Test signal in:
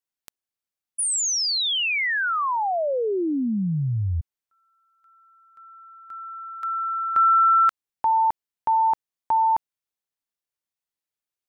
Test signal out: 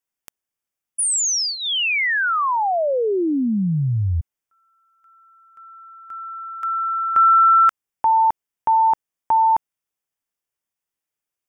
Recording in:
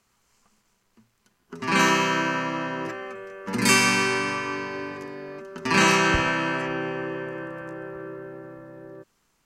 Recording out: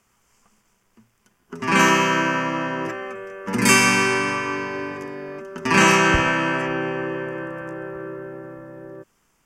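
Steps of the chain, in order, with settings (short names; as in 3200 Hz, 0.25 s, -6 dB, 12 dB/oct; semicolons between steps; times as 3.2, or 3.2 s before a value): bell 4100 Hz -13 dB 0.24 oct; gain +4 dB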